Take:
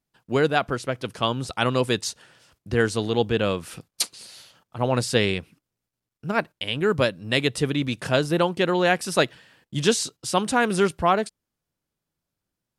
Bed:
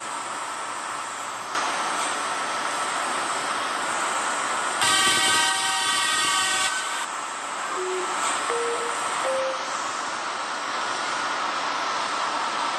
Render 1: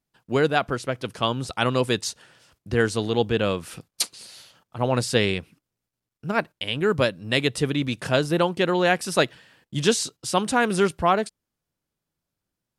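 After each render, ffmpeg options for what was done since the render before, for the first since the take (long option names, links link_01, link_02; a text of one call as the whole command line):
ffmpeg -i in.wav -af anull out.wav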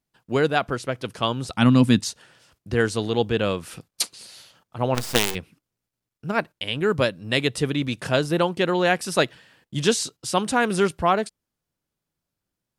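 ffmpeg -i in.wav -filter_complex "[0:a]asettb=1/sr,asplit=3[link_01][link_02][link_03];[link_01]atrim=end=1.544[link_04];[link_02]atrim=start=1.54:end=2.05,asetpts=PTS-STARTPTS,afade=type=in:duration=0.004:curve=qsin,afade=type=out:start_time=0.506:duration=0.004:curve=qsin,lowshelf=frequency=320:width_type=q:width=3:gain=7.5[link_05];[link_03]atrim=start=2.046[link_06];[link_04][link_05]acrossfade=duration=0.004:curve1=hsin:curve2=qsin[link_07];[link_07][link_06]acrossfade=duration=0.004:curve1=qsin:curve2=hsin,asplit=3[link_08][link_09][link_10];[link_08]afade=type=out:start_time=4.94:duration=0.02[link_11];[link_09]acrusher=bits=3:dc=4:mix=0:aa=0.000001,afade=type=in:start_time=4.94:duration=0.02,afade=type=out:start_time=5.34:duration=0.02[link_12];[link_10]afade=type=in:start_time=5.34:duration=0.02[link_13];[link_11][link_12][link_13]amix=inputs=3:normalize=0" out.wav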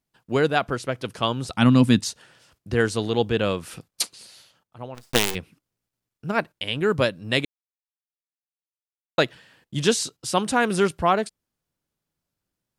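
ffmpeg -i in.wav -filter_complex "[0:a]asplit=4[link_01][link_02][link_03][link_04];[link_01]atrim=end=5.13,asetpts=PTS-STARTPTS,afade=type=out:start_time=3.92:duration=1.21[link_05];[link_02]atrim=start=5.13:end=7.45,asetpts=PTS-STARTPTS,afade=type=in:duration=0.004:curve=hsin,afade=type=out:start_time=2.316:duration=0.004:curve=hsin[link_06];[link_03]atrim=start=7.45:end=9.18,asetpts=PTS-STARTPTS,volume=0[link_07];[link_04]atrim=start=9.18,asetpts=PTS-STARTPTS,afade=type=in:duration=0.004:curve=hsin[link_08];[link_05][link_06][link_07][link_08]concat=n=4:v=0:a=1" out.wav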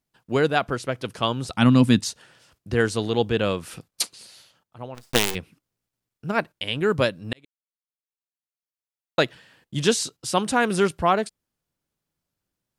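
ffmpeg -i in.wav -filter_complex "[0:a]asplit=2[link_01][link_02];[link_01]atrim=end=7.33,asetpts=PTS-STARTPTS,afade=type=out:start_time=7.326:duration=0.004:curve=hsin[link_03];[link_02]atrim=start=7.33,asetpts=PTS-STARTPTS,afade=type=in:duration=1.92[link_04];[link_03][link_04]concat=n=2:v=0:a=1" out.wav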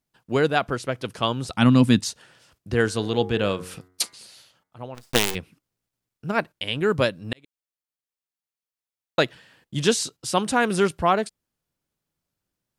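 ffmpeg -i in.wav -filter_complex "[0:a]asettb=1/sr,asplit=3[link_01][link_02][link_03];[link_01]atrim=end=2.844[link_04];[link_02]atrim=start=2.84:end=4.83,asetpts=PTS-STARTPTS,afade=type=in:duration=0.004:curve=qsin,afade=type=out:start_time=1.986:duration=0.004:curve=qsin,bandreject=frequency=91.21:width_type=h:width=4,bandreject=frequency=182.42:width_type=h:width=4,bandreject=frequency=273.63:width_type=h:width=4,bandreject=frequency=364.84:width_type=h:width=4,bandreject=frequency=456.05:width_type=h:width=4,bandreject=frequency=547.26:width_type=h:width=4,bandreject=frequency=638.47:width_type=h:width=4,bandreject=frequency=729.68:width_type=h:width=4,bandreject=frequency=820.89:width_type=h:width=4,bandreject=frequency=912.1:width_type=h:width=4,bandreject=frequency=1003.31:width_type=h:width=4,bandreject=frequency=1094.52:width_type=h:width=4,bandreject=frequency=1185.73:width_type=h:width=4,bandreject=frequency=1276.94:width_type=h:width=4,bandreject=frequency=1368.15:width_type=h:width=4,bandreject=frequency=1459.36:width_type=h:width=4,bandreject=frequency=1550.57:width_type=h:width=4,bandreject=frequency=1641.78:width_type=h:width=4,bandreject=frequency=1732.99:width_type=h:width=4,bandreject=frequency=1824.2:width_type=h:width=4,bandreject=frequency=1915.41:width_type=h:width=4,bandreject=frequency=2006.62:width_type=h:width=4,bandreject=frequency=2097.83:width_type=h:width=4,bandreject=frequency=2189.04:width_type=h:width=4[link_05];[link_03]atrim=start=4.826[link_06];[link_04][link_05]acrossfade=duration=0.004:curve1=hsin:curve2=qsin[link_07];[link_07][link_06]acrossfade=duration=0.004:curve1=qsin:curve2=hsin" out.wav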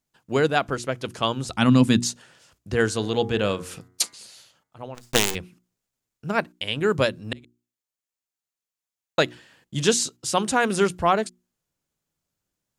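ffmpeg -i in.wav -af "equalizer=frequency=6900:width_type=o:width=0.4:gain=5.5,bandreject=frequency=60:width_type=h:width=6,bandreject=frequency=120:width_type=h:width=6,bandreject=frequency=180:width_type=h:width=6,bandreject=frequency=240:width_type=h:width=6,bandreject=frequency=300:width_type=h:width=6,bandreject=frequency=360:width_type=h:width=6" out.wav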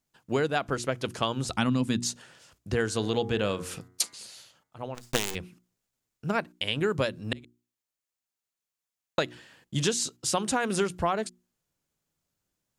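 ffmpeg -i in.wav -af "acompressor=threshold=-23dB:ratio=6" out.wav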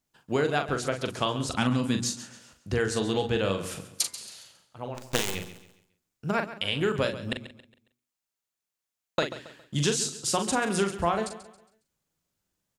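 ffmpeg -i in.wav -filter_complex "[0:a]asplit=2[link_01][link_02];[link_02]adelay=41,volume=-7dB[link_03];[link_01][link_03]amix=inputs=2:normalize=0,aecho=1:1:137|274|411|548:0.2|0.0738|0.0273|0.0101" out.wav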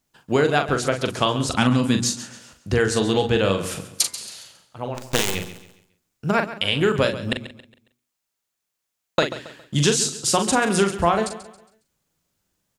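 ffmpeg -i in.wav -af "volume=7dB,alimiter=limit=-2dB:level=0:latency=1" out.wav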